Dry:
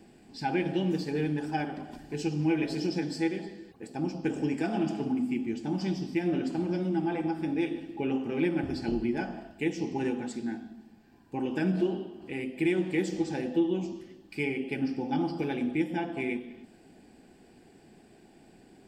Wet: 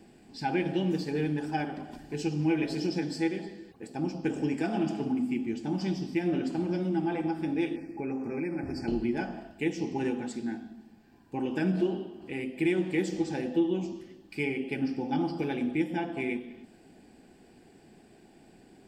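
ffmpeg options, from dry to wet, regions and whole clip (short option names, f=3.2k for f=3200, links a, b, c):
-filter_complex "[0:a]asettb=1/sr,asplit=3[a][b][c];[a]atrim=end=7.764[d];[b]atrim=start=7.76:end=8.88,asetpts=PTS-STARTPTS,afade=t=in:d=0.004:c=qsin,afade=t=out:st=1.116:d=0.004:c=qsin,acompressor=threshold=-30dB:ratio=3:attack=3.2:release=140:knee=1:detection=peak,asuperstop=centerf=3400:order=20:qfactor=1.8[e];[c]atrim=start=8.876[f];[d][e]acrossfade=d=0.004:c1=hsin:c2=qsin[g];[g][f]acrossfade=d=0.004:c1=qsin:c2=hsin"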